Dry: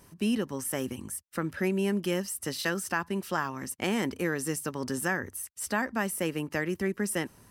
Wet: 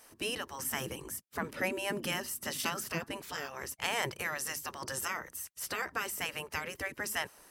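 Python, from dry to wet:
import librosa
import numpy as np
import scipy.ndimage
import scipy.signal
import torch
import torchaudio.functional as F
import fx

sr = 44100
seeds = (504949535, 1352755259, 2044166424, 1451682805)

y = fx.spec_gate(x, sr, threshold_db=-10, keep='weak')
y = fx.peak_eq(y, sr, hz=210.0, db=10.0, octaves=2.0, at=(0.59, 3.17))
y = F.gain(torch.from_numpy(y), 2.5).numpy()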